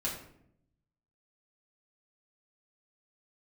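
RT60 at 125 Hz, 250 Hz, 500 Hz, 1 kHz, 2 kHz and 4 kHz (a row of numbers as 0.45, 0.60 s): 1.3, 1.0, 0.80, 0.60, 0.55, 0.45 s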